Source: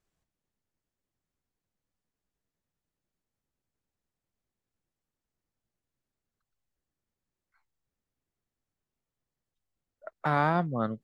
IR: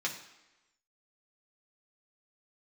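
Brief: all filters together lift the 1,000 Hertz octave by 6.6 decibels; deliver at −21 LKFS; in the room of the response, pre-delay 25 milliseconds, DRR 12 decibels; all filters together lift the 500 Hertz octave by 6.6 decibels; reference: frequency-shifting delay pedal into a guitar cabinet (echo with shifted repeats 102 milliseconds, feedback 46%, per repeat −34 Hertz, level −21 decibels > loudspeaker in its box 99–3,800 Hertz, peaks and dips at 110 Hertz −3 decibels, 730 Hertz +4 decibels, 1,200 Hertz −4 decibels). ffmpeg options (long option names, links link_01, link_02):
-filter_complex "[0:a]equalizer=frequency=500:width_type=o:gain=4.5,equalizer=frequency=1000:width_type=o:gain=5.5,asplit=2[link_01][link_02];[1:a]atrim=start_sample=2205,adelay=25[link_03];[link_02][link_03]afir=irnorm=-1:irlink=0,volume=-17dB[link_04];[link_01][link_04]amix=inputs=2:normalize=0,asplit=4[link_05][link_06][link_07][link_08];[link_06]adelay=102,afreqshift=-34,volume=-21dB[link_09];[link_07]adelay=204,afreqshift=-68,volume=-27.7dB[link_10];[link_08]adelay=306,afreqshift=-102,volume=-34.5dB[link_11];[link_05][link_09][link_10][link_11]amix=inputs=4:normalize=0,highpass=99,equalizer=frequency=110:width_type=q:width=4:gain=-3,equalizer=frequency=730:width_type=q:width=4:gain=4,equalizer=frequency=1200:width_type=q:width=4:gain=-4,lowpass=frequency=3800:width=0.5412,lowpass=frequency=3800:width=1.3066,volume=2.5dB"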